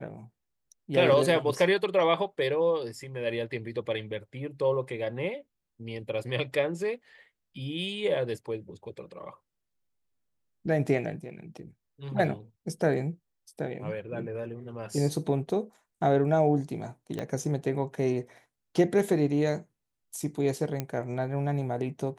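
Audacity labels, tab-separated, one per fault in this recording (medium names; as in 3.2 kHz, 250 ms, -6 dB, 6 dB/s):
17.190000	17.190000	pop -20 dBFS
20.800000	20.800000	pop -16 dBFS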